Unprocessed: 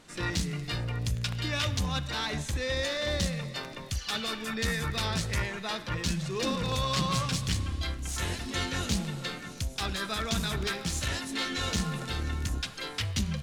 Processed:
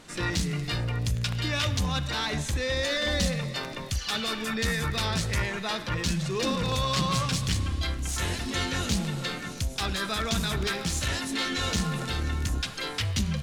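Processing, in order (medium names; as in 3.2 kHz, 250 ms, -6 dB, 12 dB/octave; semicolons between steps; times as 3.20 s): in parallel at -1.5 dB: peak limiter -29.5 dBFS, peak gain reduction 11 dB; 2.89–3.36 s: on the sum: comb 4 ms, depth 67%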